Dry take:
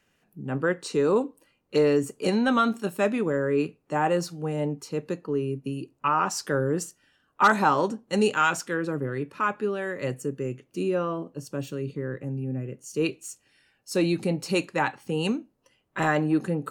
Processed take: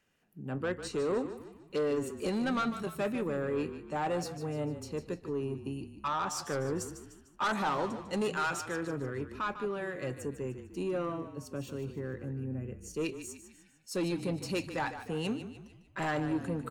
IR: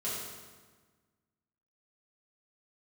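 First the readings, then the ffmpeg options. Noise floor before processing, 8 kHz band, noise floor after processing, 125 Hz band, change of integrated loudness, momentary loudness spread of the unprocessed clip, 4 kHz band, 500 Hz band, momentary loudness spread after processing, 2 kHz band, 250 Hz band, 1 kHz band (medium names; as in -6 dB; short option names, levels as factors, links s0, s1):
-70 dBFS, -6.0 dB, -61 dBFS, -7.0 dB, -8.5 dB, 11 LU, -7.0 dB, -8.0 dB, 9 LU, -9.0 dB, -8.0 dB, -9.0 dB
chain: -filter_complex "[0:a]asoftclip=type=tanh:threshold=0.1,asplit=2[s0][s1];[s1]asplit=5[s2][s3][s4][s5][s6];[s2]adelay=150,afreqshift=-34,volume=0.282[s7];[s3]adelay=300,afreqshift=-68,volume=0.13[s8];[s4]adelay=450,afreqshift=-102,volume=0.0596[s9];[s5]adelay=600,afreqshift=-136,volume=0.0275[s10];[s6]adelay=750,afreqshift=-170,volume=0.0126[s11];[s7][s8][s9][s10][s11]amix=inputs=5:normalize=0[s12];[s0][s12]amix=inputs=2:normalize=0,volume=0.501"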